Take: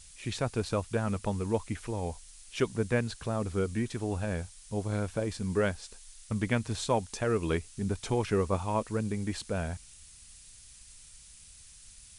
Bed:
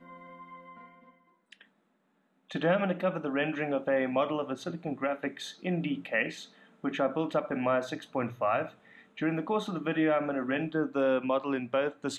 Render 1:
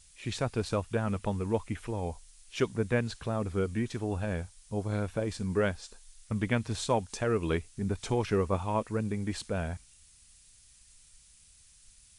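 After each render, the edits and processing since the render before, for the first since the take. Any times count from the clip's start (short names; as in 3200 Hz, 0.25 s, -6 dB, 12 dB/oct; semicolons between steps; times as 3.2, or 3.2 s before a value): noise print and reduce 6 dB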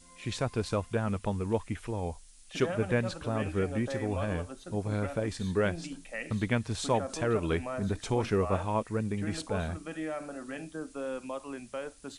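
add bed -9.5 dB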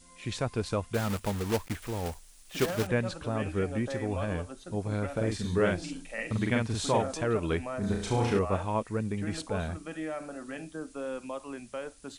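0.94–2.88 block floating point 3-bit; 5.12–7.13 doubler 45 ms -2 dB; 7.8–8.39 flutter echo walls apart 5.9 m, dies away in 0.63 s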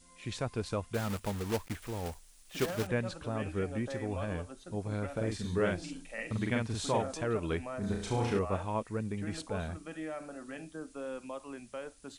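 gain -4 dB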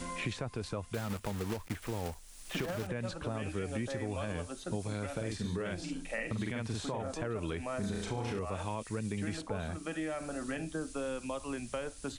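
limiter -28 dBFS, peak gain reduction 10 dB; three-band squash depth 100%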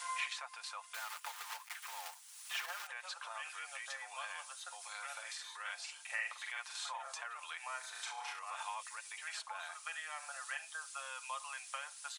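steep high-pass 850 Hz 36 dB/oct; comb 5.7 ms, depth 49%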